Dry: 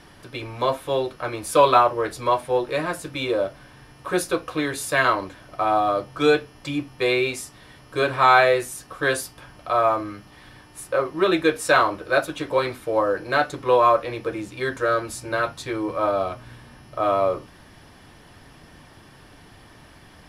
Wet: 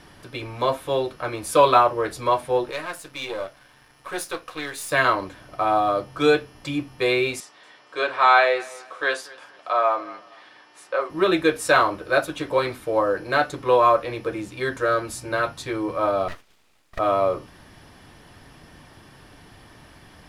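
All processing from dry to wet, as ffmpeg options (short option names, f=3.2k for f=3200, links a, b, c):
-filter_complex "[0:a]asettb=1/sr,asplit=3[a][b][c];[a]atrim=end=2.714[d];[b]atrim=start=2.71:end=4.91,asetpts=PTS-STARTPTS,afade=t=in:d=0.004:c=qsin,afade=t=out:st=2.196:d=0.004:c=qsin,aeval=exprs='if(lt(val(0),0),0.447*val(0),val(0))':c=same,lowshelf=f=460:g=-11.5[e];[c]atrim=start=4.906[f];[d][e]acrossfade=d=0.004:c1=hsin:c2=qsin[g];[g][f]acrossfade=d=0.004:c1=qsin:c2=hsin,asettb=1/sr,asplit=3[h][i][j];[h]atrim=end=7.404[k];[i]atrim=start=7.4:end=11.1,asetpts=PTS-STARTPTS,afade=t=in:d=0.004:c=qsin,afade=t=out:st=3.696:d=0.004:c=qsin,highpass=510,lowpass=5.4k,aecho=1:1:233|466:0.0841|0.0278,atrim=end_sample=163170[l];[j]atrim=start=11.096[m];[k][l]acrossfade=d=0.004:c1=hsin:c2=qsin[n];[n][m]acrossfade=d=0.004:c1=qsin:c2=hsin,asettb=1/sr,asplit=3[o][p][q];[o]atrim=end=16.284[r];[p]atrim=start=16.28:end=16.99,asetpts=PTS-STARTPTS,afade=t=in:d=0.004:c=qsin,afade=t=out:st=0.706:d=0.004:c=qsin,highpass=f=390:w=0.5412,highpass=f=390:w=1.3066,agate=range=-10dB:threshold=-48dB:ratio=16:release=100:detection=peak,aeval=exprs='abs(val(0))':c=same[s];[q]atrim=start=16.986[t];[r][s]acrossfade=d=0.004:c1=hsin:c2=qsin[u];[u][t]acrossfade=d=0.004:c1=qsin:c2=hsin"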